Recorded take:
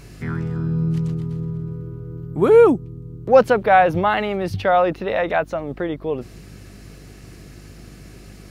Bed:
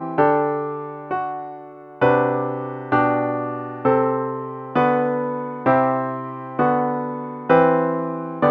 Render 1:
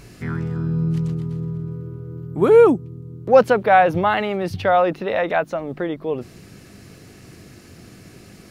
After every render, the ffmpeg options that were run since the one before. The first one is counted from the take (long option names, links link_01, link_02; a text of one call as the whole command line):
ffmpeg -i in.wav -af "bandreject=frequency=50:width_type=h:width=4,bandreject=frequency=100:width_type=h:width=4,bandreject=frequency=150:width_type=h:width=4" out.wav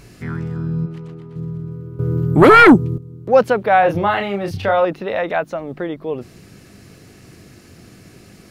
ffmpeg -i in.wav -filter_complex "[0:a]asplit=3[link_01][link_02][link_03];[link_01]afade=type=out:start_time=0.85:duration=0.02[link_04];[link_02]bass=frequency=250:gain=-13,treble=frequency=4000:gain=-12,afade=type=in:start_time=0.85:duration=0.02,afade=type=out:start_time=1.35:duration=0.02[link_05];[link_03]afade=type=in:start_time=1.35:duration=0.02[link_06];[link_04][link_05][link_06]amix=inputs=3:normalize=0,asettb=1/sr,asplit=3[link_07][link_08][link_09];[link_07]atrim=end=1.994[link_10];[link_08]atrim=start=1.99:end=2.98,asetpts=PTS-STARTPTS,afade=type=in:duration=0.004:curve=qsin,afade=type=out:start_time=0.986:duration=0.004:curve=qsin,aeval=exprs='0.708*sin(PI/2*3.16*val(0)/0.708)':channel_layout=same[link_11];[link_09]atrim=start=2.976[link_12];[link_10][link_11]acrossfade=duration=0.004:curve1=hsin:curve2=qsin[link_13];[link_13][link_12]acrossfade=duration=0.004:curve1=qsin:curve2=hsin,asettb=1/sr,asplit=3[link_14][link_15][link_16];[link_14]atrim=end=3.804[link_17];[link_15]atrim=start=3.8:end=4.85,asetpts=PTS-STARTPTS,afade=type=in:duration=0.004:curve=qsin,afade=type=out:start_time=1.046:duration=0.004:curve=qsin,asplit=2[link_18][link_19];[link_19]adelay=30,volume=-5dB[link_20];[link_18][link_20]amix=inputs=2:normalize=0,atrim=end_sample=46305[link_21];[link_16]atrim=start=4.846[link_22];[link_17][link_21]acrossfade=duration=0.004:curve1=hsin:curve2=qsin[link_23];[link_23][link_22]acrossfade=duration=0.004:curve1=qsin:curve2=hsin" out.wav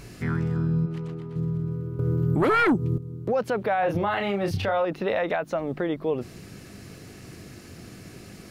ffmpeg -i in.wav -af "acompressor=threshold=-23dB:ratio=1.5,alimiter=limit=-16.5dB:level=0:latency=1:release=106" out.wav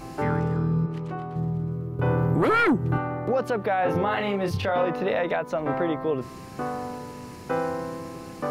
ffmpeg -i in.wav -i bed.wav -filter_complex "[1:a]volume=-12.5dB[link_01];[0:a][link_01]amix=inputs=2:normalize=0" out.wav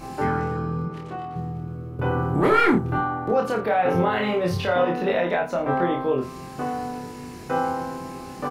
ffmpeg -i in.wav -filter_complex "[0:a]asplit=2[link_01][link_02];[link_02]adelay=28,volume=-4.5dB[link_03];[link_01][link_03]amix=inputs=2:normalize=0,aecho=1:1:23|80:0.562|0.2" out.wav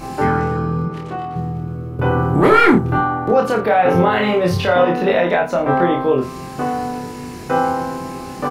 ffmpeg -i in.wav -af "volume=7dB,alimiter=limit=-1dB:level=0:latency=1" out.wav